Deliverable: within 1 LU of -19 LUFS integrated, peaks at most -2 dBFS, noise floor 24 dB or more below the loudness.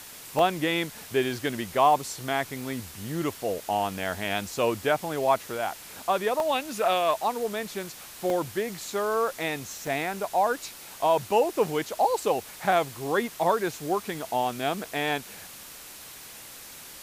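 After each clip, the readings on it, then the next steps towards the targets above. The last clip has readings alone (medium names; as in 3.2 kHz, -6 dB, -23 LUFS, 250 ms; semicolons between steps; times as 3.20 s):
dropouts 7; longest dropout 1.3 ms; noise floor -45 dBFS; noise floor target -52 dBFS; loudness -27.5 LUFS; peak level -9.0 dBFS; loudness target -19.0 LUFS
-> interpolate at 0.39/2.61/6.40/8.30/9.87/10.63/12.21 s, 1.3 ms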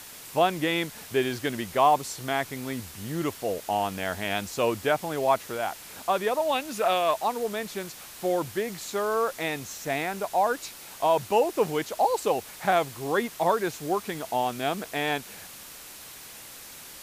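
dropouts 0; noise floor -45 dBFS; noise floor target -52 dBFS
-> noise print and reduce 7 dB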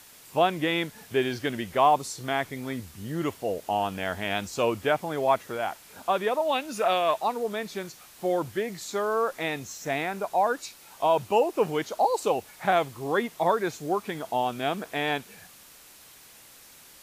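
noise floor -52 dBFS; loudness -27.5 LUFS; peak level -9.5 dBFS; loudness target -19.0 LUFS
-> trim +8.5 dB; peak limiter -2 dBFS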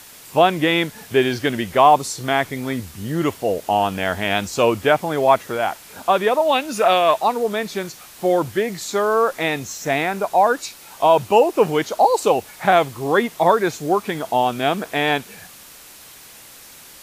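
loudness -19.0 LUFS; peak level -2.0 dBFS; noise floor -43 dBFS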